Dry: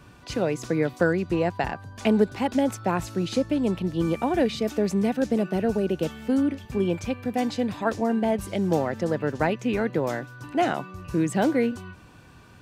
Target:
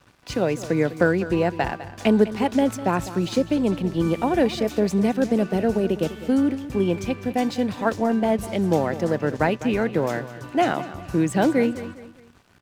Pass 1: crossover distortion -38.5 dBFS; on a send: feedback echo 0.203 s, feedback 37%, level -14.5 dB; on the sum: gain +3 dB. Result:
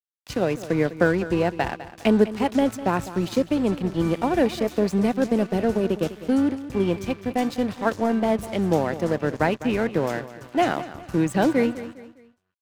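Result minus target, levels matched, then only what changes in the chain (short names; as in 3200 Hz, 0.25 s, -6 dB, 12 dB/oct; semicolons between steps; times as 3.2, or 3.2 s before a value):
crossover distortion: distortion +9 dB
change: crossover distortion -49 dBFS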